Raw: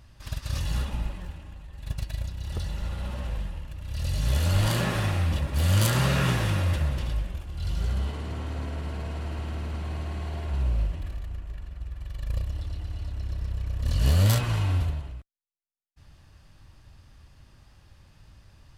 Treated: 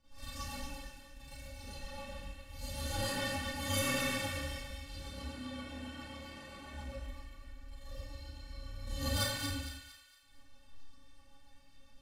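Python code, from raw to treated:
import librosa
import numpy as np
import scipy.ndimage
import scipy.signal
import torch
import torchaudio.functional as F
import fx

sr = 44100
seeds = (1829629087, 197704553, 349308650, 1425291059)

p1 = fx.hum_notches(x, sr, base_hz=60, count=9)
p2 = fx.stiff_resonator(p1, sr, f0_hz=270.0, decay_s=0.3, stiffness=0.008)
p3 = fx.stretch_grains(p2, sr, factor=0.64, grain_ms=157.0)
p4 = fx.rotary(p3, sr, hz=7.5)
p5 = p4 + fx.echo_wet_highpass(p4, sr, ms=229, feedback_pct=40, hz=1600.0, wet_db=-6.0, dry=0)
p6 = fx.rev_schroeder(p5, sr, rt60_s=0.62, comb_ms=28, drr_db=-8.5)
y = p6 * 10.0 ** (4.0 / 20.0)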